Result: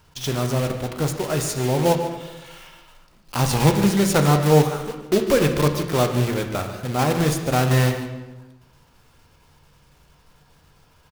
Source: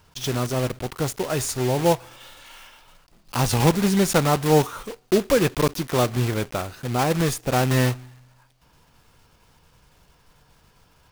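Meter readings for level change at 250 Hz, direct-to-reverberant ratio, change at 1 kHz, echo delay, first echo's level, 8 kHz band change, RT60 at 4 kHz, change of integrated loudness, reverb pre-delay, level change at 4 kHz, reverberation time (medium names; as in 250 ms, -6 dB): +2.0 dB, 5.0 dB, +1.0 dB, 147 ms, -13.5 dB, +0.5 dB, 0.95 s, +1.5 dB, 6 ms, +1.0 dB, 1.1 s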